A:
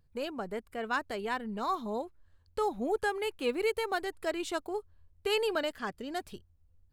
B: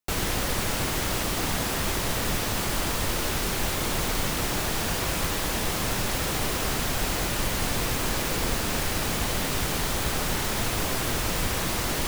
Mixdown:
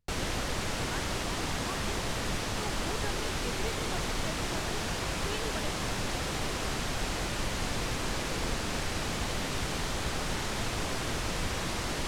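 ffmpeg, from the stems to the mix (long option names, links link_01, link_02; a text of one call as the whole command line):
ffmpeg -i stem1.wav -i stem2.wav -filter_complex "[0:a]volume=-10.5dB[link_01];[1:a]lowpass=7900,volume=-5dB[link_02];[link_01][link_02]amix=inputs=2:normalize=0" out.wav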